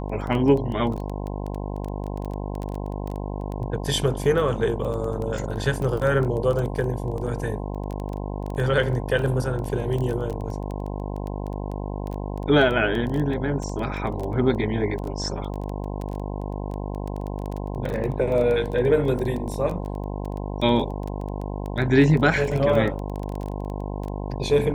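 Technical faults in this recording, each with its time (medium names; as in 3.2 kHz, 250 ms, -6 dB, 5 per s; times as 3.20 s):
buzz 50 Hz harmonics 21 -30 dBFS
crackle 12 per s -27 dBFS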